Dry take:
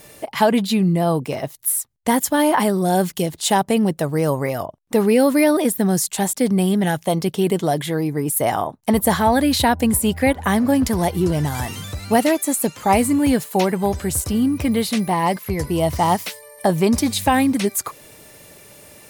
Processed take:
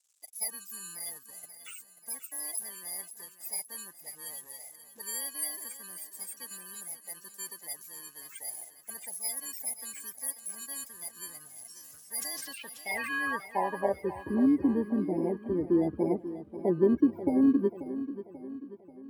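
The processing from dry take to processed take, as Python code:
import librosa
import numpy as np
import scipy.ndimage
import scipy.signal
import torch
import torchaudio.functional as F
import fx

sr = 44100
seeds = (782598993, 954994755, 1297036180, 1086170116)

p1 = fx.bit_reversed(x, sr, seeds[0], block=32)
p2 = fx.high_shelf(p1, sr, hz=11000.0, db=8.5)
p3 = fx.sample_hold(p2, sr, seeds[1], rate_hz=7300.0, jitter_pct=0)
p4 = p2 + (p3 * librosa.db_to_amplitude(-11.5))
p5 = fx.dispersion(p4, sr, late='highs', ms=57.0, hz=380.0, at=(4.0, 5.02))
p6 = fx.spec_topn(p5, sr, count=64)
p7 = np.sign(p6) * np.maximum(np.abs(p6) - 10.0 ** (-40.0 / 20.0), 0.0)
p8 = fx.filter_sweep_bandpass(p7, sr, from_hz=7400.0, to_hz=330.0, start_s=12.2, end_s=14.3, q=3.9)
p9 = p8 + fx.echo_feedback(p8, sr, ms=537, feedback_pct=50, wet_db=-13.0, dry=0)
y = fx.sustainer(p9, sr, db_per_s=26.0, at=(11.8, 13.26))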